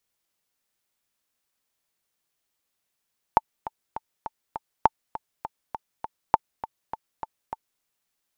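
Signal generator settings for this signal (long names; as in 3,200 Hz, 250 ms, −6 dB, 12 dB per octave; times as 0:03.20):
click track 202 BPM, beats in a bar 5, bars 3, 886 Hz, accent 15.5 dB −2.5 dBFS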